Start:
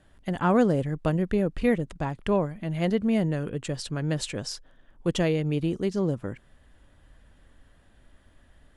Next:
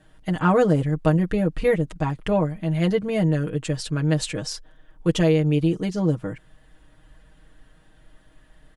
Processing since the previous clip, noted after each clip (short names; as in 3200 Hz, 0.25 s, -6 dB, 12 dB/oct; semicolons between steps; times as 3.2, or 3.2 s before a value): comb 6.4 ms, depth 85%; gain +1.5 dB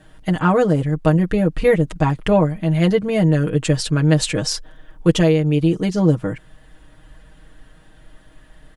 vocal rider within 4 dB 0.5 s; gain +5 dB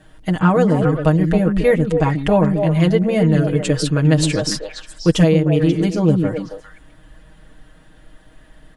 delay with a stepping band-pass 0.134 s, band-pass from 230 Hz, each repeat 1.4 oct, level -1 dB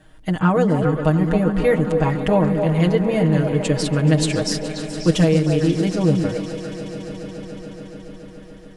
swelling echo 0.142 s, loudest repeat 5, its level -17.5 dB; gain -2.5 dB